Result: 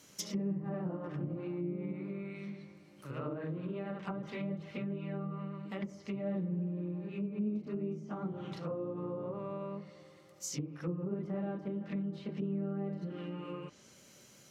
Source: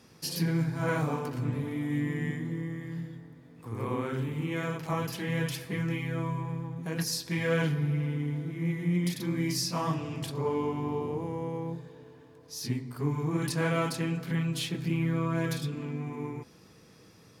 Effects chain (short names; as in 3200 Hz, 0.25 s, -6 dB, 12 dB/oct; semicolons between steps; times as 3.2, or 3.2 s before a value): varispeed +20%; treble ducked by the level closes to 520 Hz, closed at -26.5 dBFS; high shelf 2100 Hz +10.5 dB; gain -6.5 dB